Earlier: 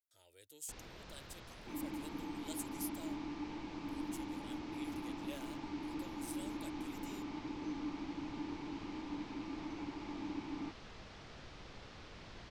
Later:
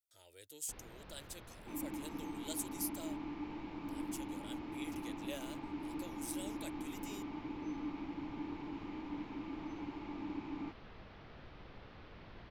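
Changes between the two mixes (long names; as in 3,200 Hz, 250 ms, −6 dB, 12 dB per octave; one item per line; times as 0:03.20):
speech +4.5 dB
first sound: add high-frequency loss of the air 270 metres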